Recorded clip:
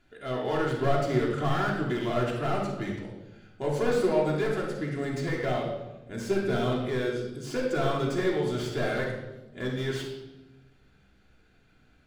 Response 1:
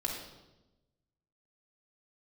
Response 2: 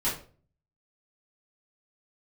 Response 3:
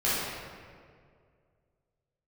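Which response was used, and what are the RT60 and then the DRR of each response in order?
1; 1.0, 0.40, 2.1 seconds; −3.0, −10.5, −11.5 decibels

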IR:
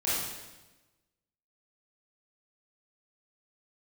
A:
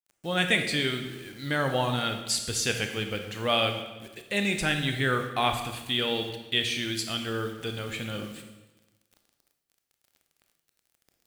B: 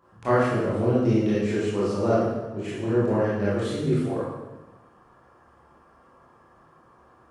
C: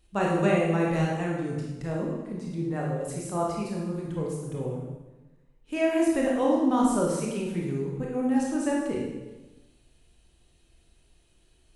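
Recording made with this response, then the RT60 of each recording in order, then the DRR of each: B; 1.1, 1.1, 1.1 seconds; 5.0, −10.0, −3.0 decibels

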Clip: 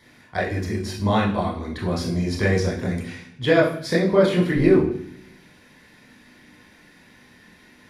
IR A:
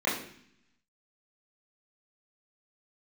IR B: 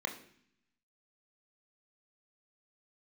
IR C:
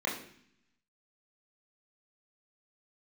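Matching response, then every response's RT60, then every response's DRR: C; 0.60, 0.60, 0.60 seconds; −10.0, 3.0, −5.0 decibels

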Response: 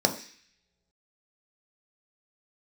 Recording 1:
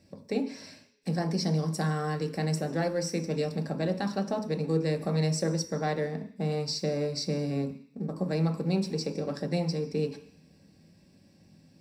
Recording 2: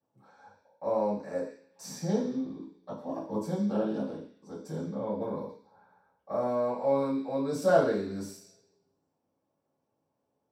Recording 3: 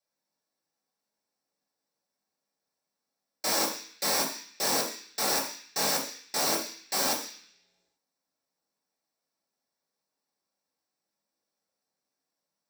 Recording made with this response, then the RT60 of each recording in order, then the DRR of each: 1; non-exponential decay, non-exponential decay, non-exponential decay; 4.0, −12.5, −4.5 decibels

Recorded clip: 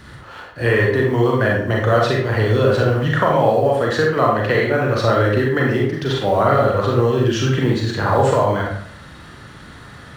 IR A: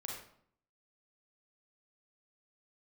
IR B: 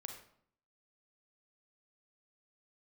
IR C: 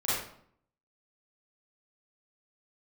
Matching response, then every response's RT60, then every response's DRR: A; 0.60, 0.60, 0.60 seconds; −2.5, 3.0, −11.0 decibels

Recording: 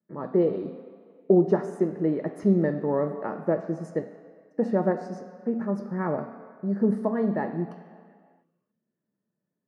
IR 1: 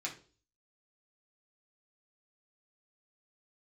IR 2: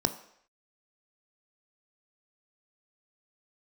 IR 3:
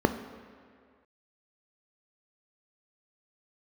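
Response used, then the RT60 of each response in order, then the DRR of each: 3; 0.40 s, non-exponential decay, 2.0 s; −3.0, 9.0, 8.0 decibels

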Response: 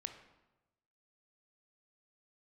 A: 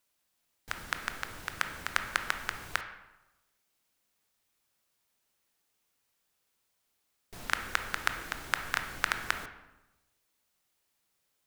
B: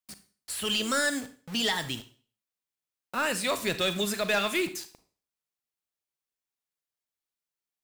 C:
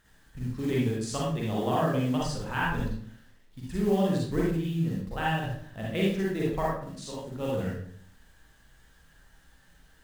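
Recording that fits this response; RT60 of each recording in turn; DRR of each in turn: A; 1.1, 0.45, 0.55 seconds; 7.0, 11.5, −5.0 decibels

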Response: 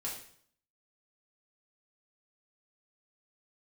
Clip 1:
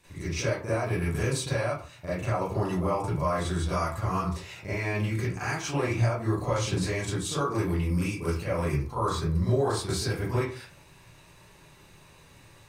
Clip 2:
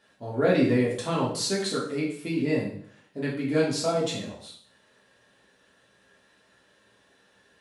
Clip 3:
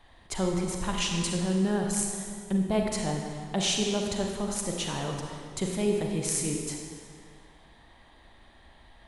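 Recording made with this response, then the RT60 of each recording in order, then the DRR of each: 2; 0.40, 0.60, 2.1 seconds; −12.5, −5.0, 1.0 decibels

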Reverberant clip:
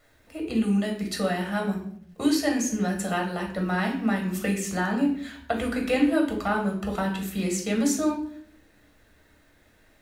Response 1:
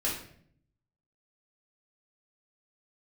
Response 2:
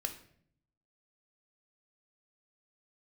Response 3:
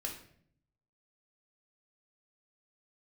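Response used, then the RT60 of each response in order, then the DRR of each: 3; 0.60, 0.60, 0.60 seconds; −5.5, 5.5, 0.5 decibels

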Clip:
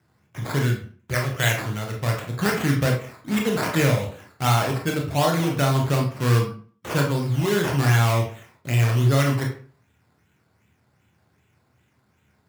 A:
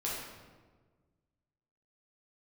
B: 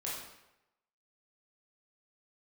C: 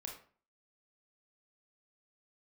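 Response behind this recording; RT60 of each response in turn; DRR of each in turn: C; 1.4, 0.90, 0.45 seconds; −6.5, −6.5, 0.0 decibels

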